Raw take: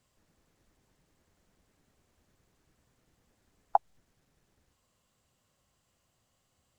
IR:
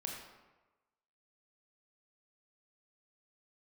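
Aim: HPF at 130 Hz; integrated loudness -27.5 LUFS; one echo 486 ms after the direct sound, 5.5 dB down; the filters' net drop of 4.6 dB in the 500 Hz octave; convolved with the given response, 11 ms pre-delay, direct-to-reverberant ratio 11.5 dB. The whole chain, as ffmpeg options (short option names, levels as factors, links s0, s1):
-filter_complex "[0:a]highpass=130,equalizer=f=500:t=o:g=-8.5,aecho=1:1:486:0.531,asplit=2[s0][s1];[1:a]atrim=start_sample=2205,adelay=11[s2];[s1][s2]afir=irnorm=-1:irlink=0,volume=0.282[s3];[s0][s3]amix=inputs=2:normalize=0,volume=2.99"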